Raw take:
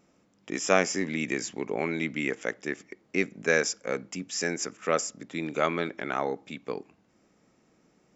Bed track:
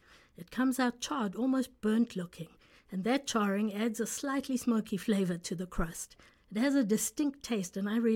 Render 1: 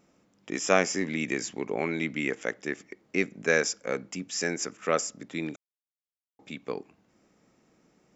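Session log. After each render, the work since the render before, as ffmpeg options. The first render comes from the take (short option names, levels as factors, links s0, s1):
-filter_complex "[0:a]asplit=3[s0][s1][s2];[s0]atrim=end=5.56,asetpts=PTS-STARTPTS,afade=t=out:st=5.556:d=0.004:c=hsin[s3];[s1]atrim=start=5.56:end=6.39,asetpts=PTS-STARTPTS,volume=0[s4];[s2]atrim=start=6.39,asetpts=PTS-STARTPTS,afade=t=in:d=0.004:c=hsin[s5];[s3][s4][s5]concat=n=3:v=0:a=1"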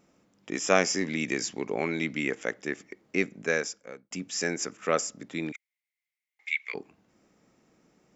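-filter_complex "[0:a]asettb=1/sr,asplit=3[s0][s1][s2];[s0]atrim=end=0.754[s3];[s1]atrim=start=0.75:end=2.23,asetpts=PTS-STARTPTS,afade=t=in:d=0.004:c=qsin,afade=t=out:st=1.476:d=0.004:c=qsin,equalizer=f=5100:t=o:w=0.77:g=5[s4];[s2]atrim=start=2.226[s5];[s3][s4]acrossfade=d=0.004:c1=hsin:c2=qsin[s6];[s6][s5]acrossfade=d=0.004:c1=qsin:c2=hsin,asettb=1/sr,asplit=3[s7][s8][s9];[s7]atrim=end=5.524[s10];[s8]atrim=start=5.52:end=6.74,asetpts=PTS-STARTPTS,afade=t=in:d=0.004:c=qsin,afade=t=out:st=1.216:d=0.004:c=qsin,highpass=f=2100:t=q:w=14[s11];[s9]atrim=start=6.736[s12];[s10][s11]acrossfade=d=0.004:c1=hsin:c2=qsin[s13];[s13][s12]acrossfade=d=0.004:c1=qsin:c2=hsin,asplit=2[s14][s15];[s14]atrim=end=4.11,asetpts=PTS-STARTPTS,afade=t=out:st=3.26:d=0.85[s16];[s15]atrim=start=4.11,asetpts=PTS-STARTPTS,afade=t=in:d=0.004:c=hsin[s17];[s16][s17]concat=n=2:v=0:a=1"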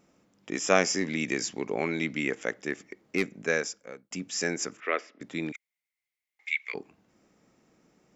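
-filter_complex "[0:a]asettb=1/sr,asplit=3[s0][s1][s2];[s0]atrim=end=2.694[s3];[s1]atrim=start=2.69:end=3.35,asetpts=PTS-STARTPTS,afade=t=in:d=0.004:c=qsin,afade=t=out:st=0.656:d=0.004:c=qsin,volume=7.94,asoftclip=hard,volume=0.126[s4];[s2]atrim=start=3.346[s5];[s3][s4]acrossfade=d=0.004:c1=hsin:c2=qsin[s6];[s6][s5]acrossfade=d=0.004:c1=qsin:c2=hsin,asettb=1/sr,asplit=3[s7][s8][s9];[s7]atrim=end=4.804[s10];[s8]atrim=start=4.8:end=5.21,asetpts=PTS-STARTPTS,afade=t=in:d=0.004:c=qsin,afade=t=out:st=0.406:d=0.004:c=qsin,highpass=f=330:w=0.5412,highpass=f=330:w=1.3066,equalizer=f=530:t=q:w=4:g=-7,equalizer=f=830:t=q:w=4:g=-6,equalizer=f=1300:t=q:w=4:g=-3,equalizer=f=2000:t=q:w=4:g=7,lowpass=f=3400:w=0.5412,lowpass=f=3400:w=1.3066[s11];[s9]atrim=start=5.206[s12];[s10][s11]acrossfade=d=0.004:c1=hsin:c2=qsin[s13];[s13][s12]acrossfade=d=0.004:c1=qsin:c2=hsin"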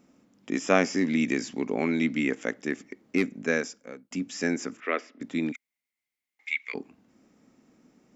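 -filter_complex "[0:a]acrossover=split=3800[s0][s1];[s1]acompressor=threshold=0.0126:ratio=4:attack=1:release=60[s2];[s0][s2]amix=inputs=2:normalize=0,equalizer=f=250:t=o:w=0.45:g=10.5"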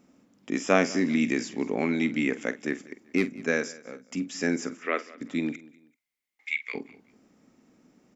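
-filter_complex "[0:a]asplit=2[s0][s1];[s1]adelay=47,volume=0.2[s2];[s0][s2]amix=inputs=2:normalize=0,aecho=1:1:192|384:0.0891|0.0294"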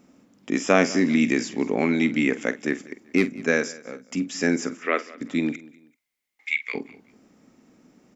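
-af "volume=1.68,alimiter=limit=0.794:level=0:latency=1"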